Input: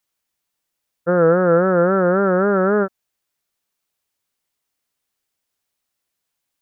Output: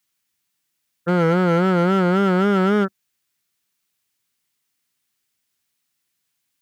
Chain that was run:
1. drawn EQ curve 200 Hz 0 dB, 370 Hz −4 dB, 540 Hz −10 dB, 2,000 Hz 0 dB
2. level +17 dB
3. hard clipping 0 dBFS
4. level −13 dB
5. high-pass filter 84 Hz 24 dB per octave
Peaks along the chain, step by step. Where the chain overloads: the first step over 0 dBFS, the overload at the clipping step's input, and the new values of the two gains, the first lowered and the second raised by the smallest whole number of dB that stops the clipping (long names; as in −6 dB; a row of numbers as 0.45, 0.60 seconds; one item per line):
−9.5, +7.5, 0.0, −13.0, −7.5 dBFS
step 2, 7.5 dB
step 2 +9 dB, step 4 −5 dB